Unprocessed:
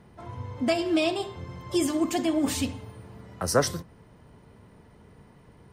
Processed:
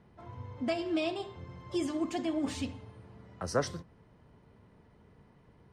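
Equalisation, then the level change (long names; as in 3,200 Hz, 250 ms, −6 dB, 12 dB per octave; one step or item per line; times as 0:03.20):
high-frequency loss of the air 71 metres
−7.0 dB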